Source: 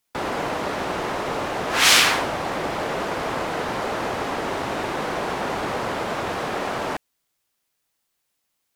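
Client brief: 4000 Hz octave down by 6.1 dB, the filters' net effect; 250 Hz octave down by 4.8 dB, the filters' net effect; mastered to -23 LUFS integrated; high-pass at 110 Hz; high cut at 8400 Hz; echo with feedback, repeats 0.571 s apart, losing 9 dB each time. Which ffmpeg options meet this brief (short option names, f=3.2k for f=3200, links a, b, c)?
-af "highpass=110,lowpass=8.4k,equalizer=f=250:t=o:g=-6.5,equalizer=f=4k:t=o:g=-8,aecho=1:1:571|1142|1713|2284:0.355|0.124|0.0435|0.0152,volume=2.5dB"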